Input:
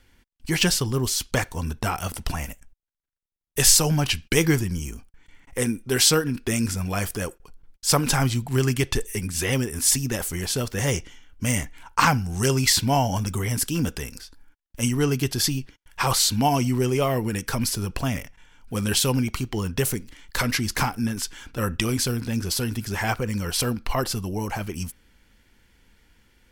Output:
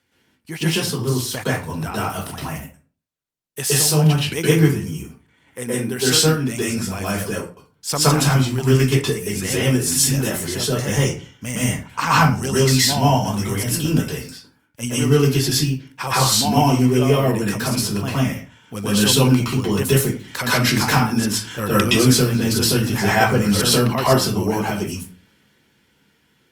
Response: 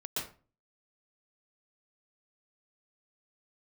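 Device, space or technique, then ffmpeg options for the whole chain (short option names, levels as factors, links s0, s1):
far-field microphone of a smart speaker: -filter_complex "[1:a]atrim=start_sample=2205[s0];[0:a][s0]afir=irnorm=-1:irlink=0,highpass=f=100:w=0.5412,highpass=f=100:w=1.3066,dynaudnorm=f=110:g=31:m=5.31,volume=0.891" -ar 48000 -c:a libopus -b:a 48k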